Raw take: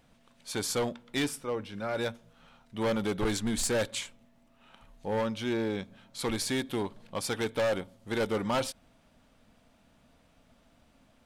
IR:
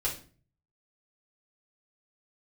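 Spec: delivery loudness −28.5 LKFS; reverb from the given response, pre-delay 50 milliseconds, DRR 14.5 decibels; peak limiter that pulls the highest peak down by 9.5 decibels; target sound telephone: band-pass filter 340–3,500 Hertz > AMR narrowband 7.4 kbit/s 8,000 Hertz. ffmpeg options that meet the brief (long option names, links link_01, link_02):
-filter_complex "[0:a]alimiter=level_in=9.5dB:limit=-24dB:level=0:latency=1,volume=-9.5dB,asplit=2[link_01][link_02];[1:a]atrim=start_sample=2205,adelay=50[link_03];[link_02][link_03]afir=irnorm=-1:irlink=0,volume=-20dB[link_04];[link_01][link_04]amix=inputs=2:normalize=0,highpass=340,lowpass=3500,volume=16dB" -ar 8000 -c:a libopencore_amrnb -b:a 7400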